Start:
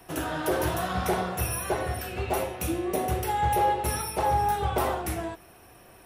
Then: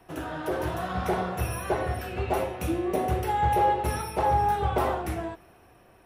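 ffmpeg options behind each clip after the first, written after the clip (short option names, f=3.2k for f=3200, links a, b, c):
-af "highshelf=f=4k:g=-10.5,dynaudnorm=f=230:g=9:m=4.5dB,volume=-3dB"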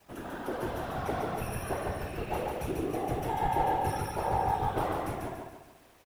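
-filter_complex "[0:a]acrusher=bits=8:mix=0:aa=0.000001,afftfilt=real='hypot(re,im)*cos(2*PI*random(0))':imag='hypot(re,im)*sin(2*PI*random(1))':win_size=512:overlap=0.75,asplit=2[a][b];[b]aecho=0:1:144|288|432|576|720:0.708|0.297|0.125|0.0525|0.022[c];[a][c]amix=inputs=2:normalize=0,volume=-1dB"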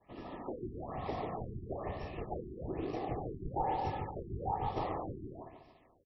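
-af "asuperstop=centerf=1500:order=20:qfactor=4.2,acrusher=bits=4:mode=log:mix=0:aa=0.000001,afftfilt=real='re*lt(b*sr/1024,400*pow(5800/400,0.5+0.5*sin(2*PI*1.1*pts/sr)))':imag='im*lt(b*sr/1024,400*pow(5800/400,0.5+0.5*sin(2*PI*1.1*pts/sr)))':win_size=1024:overlap=0.75,volume=-5.5dB"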